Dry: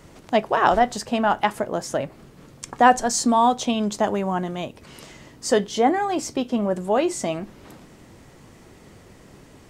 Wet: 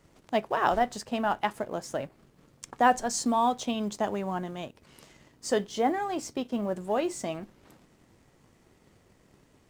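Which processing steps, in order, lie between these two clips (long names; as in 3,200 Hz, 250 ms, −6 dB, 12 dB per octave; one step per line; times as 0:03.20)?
mu-law and A-law mismatch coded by A
level −7 dB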